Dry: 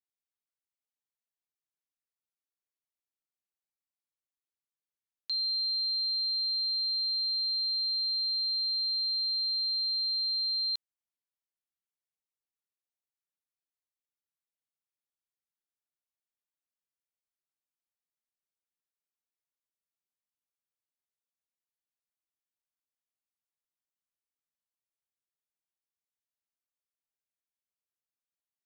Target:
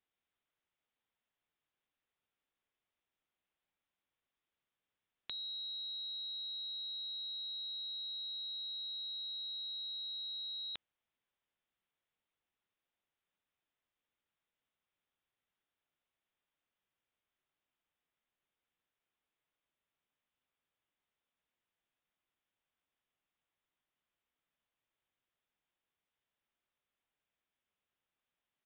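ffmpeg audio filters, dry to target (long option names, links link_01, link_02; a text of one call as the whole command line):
ffmpeg -i in.wav -af "aresample=8000,aresample=44100,volume=9dB" out.wav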